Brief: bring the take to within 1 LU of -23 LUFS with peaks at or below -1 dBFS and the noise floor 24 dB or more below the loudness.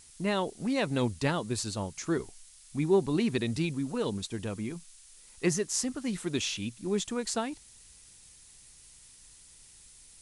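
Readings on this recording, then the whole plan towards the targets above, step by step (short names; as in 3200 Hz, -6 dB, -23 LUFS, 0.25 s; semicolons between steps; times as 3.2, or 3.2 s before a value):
noise floor -55 dBFS; noise floor target -56 dBFS; loudness -31.5 LUFS; peak -12.5 dBFS; loudness target -23.0 LUFS
-> denoiser 6 dB, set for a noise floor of -55 dBFS; gain +8.5 dB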